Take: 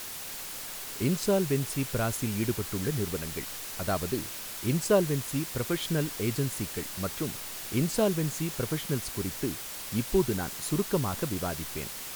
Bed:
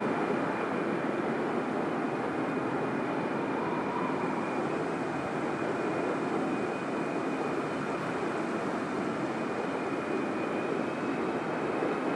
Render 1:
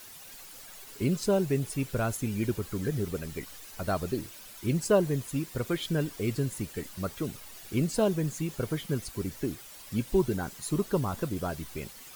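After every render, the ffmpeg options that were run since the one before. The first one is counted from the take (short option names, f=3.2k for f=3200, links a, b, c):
-af "afftdn=nr=11:nf=-40"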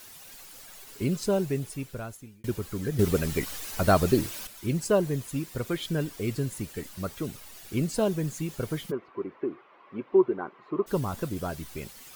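-filter_complex "[0:a]asplit=3[a][b][c];[a]afade=t=out:st=8.9:d=0.02[d];[b]highpass=320,equalizer=f=370:t=q:w=4:g=8,equalizer=f=1.1k:t=q:w=4:g=9,equalizer=f=1.7k:t=q:w=4:g=-5,lowpass=f=2.1k:w=0.5412,lowpass=f=2.1k:w=1.3066,afade=t=in:st=8.9:d=0.02,afade=t=out:st=10.86:d=0.02[e];[c]afade=t=in:st=10.86:d=0.02[f];[d][e][f]amix=inputs=3:normalize=0,asplit=4[g][h][i][j];[g]atrim=end=2.44,asetpts=PTS-STARTPTS,afade=t=out:st=1.39:d=1.05[k];[h]atrim=start=2.44:end=2.992,asetpts=PTS-STARTPTS,afade=t=in:d=0.004:c=hsin[l];[i]atrim=start=2.988:end=4.472,asetpts=PTS-STARTPTS,volume=9dB[m];[j]atrim=start=4.468[n];[k][l]concat=n=2:v=0:a=1[o];[o][m]acrossfade=d=0.004:c1=hsin:c2=hsin[p];[p][n]acrossfade=d=0.004:c1=hsin:c2=hsin"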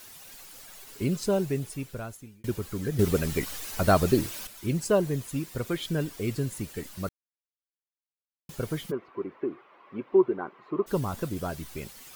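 -filter_complex "[0:a]asplit=3[a][b][c];[a]atrim=end=7.09,asetpts=PTS-STARTPTS,afade=t=out:st=7.086:d=0.004:c=hsin[d];[b]atrim=start=7.09:end=8.49,asetpts=PTS-STARTPTS,volume=0[e];[c]atrim=start=8.49,asetpts=PTS-STARTPTS,afade=t=in:d=0.004:c=hsin[f];[d][e][f]concat=n=3:v=0:a=1"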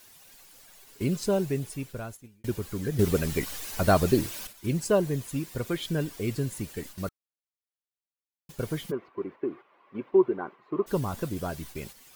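-af "agate=range=-6dB:threshold=-43dB:ratio=16:detection=peak,bandreject=f=1.3k:w=22"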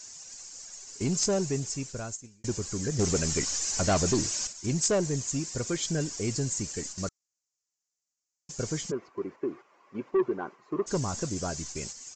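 -af "aexciter=amount=4.6:drive=9.5:freq=5.2k,aresample=16000,asoftclip=type=tanh:threshold=-19.5dB,aresample=44100"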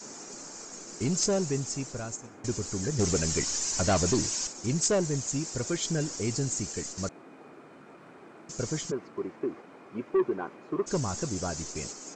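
-filter_complex "[1:a]volume=-18.5dB[a];[0:a][a]amix=inputs=2:normalize=0"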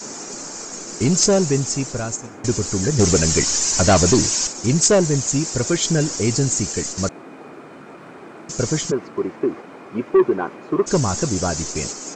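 -af "volume=11dB"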